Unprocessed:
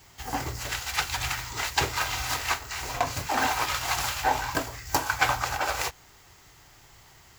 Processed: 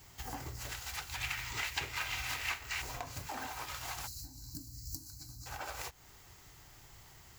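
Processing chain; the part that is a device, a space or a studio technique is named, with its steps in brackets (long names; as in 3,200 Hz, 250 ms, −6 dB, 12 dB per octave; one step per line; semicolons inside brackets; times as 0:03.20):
ASMR close-microphone chain (low-shelf EQ 250 Hz +5 dB; downward compressor 5 to 1, threshold −35 dBFS, peak gain reduction 16 dB; high-shelf EQ 8,400 Hz +6 dB)
0:01.15–0:02.82: parametric band 2,400 Hz +10.5 dB 1.2 octaves
0:04.07–0:05.46: gain on a spectral selection 340–3,900 Hz −28 dB
level −5.5 dB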